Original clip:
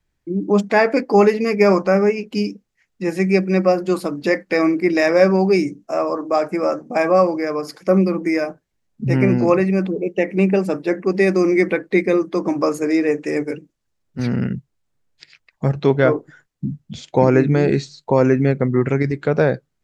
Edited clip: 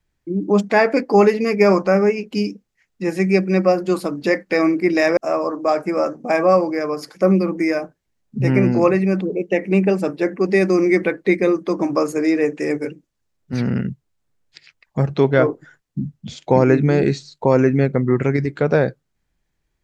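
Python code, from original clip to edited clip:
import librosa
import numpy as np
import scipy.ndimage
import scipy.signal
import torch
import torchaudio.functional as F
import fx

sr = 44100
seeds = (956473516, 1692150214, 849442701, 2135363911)

y = fx.edit(x, sr, fx.cut(start_s=5.17, length_s=0.66), tone=tone)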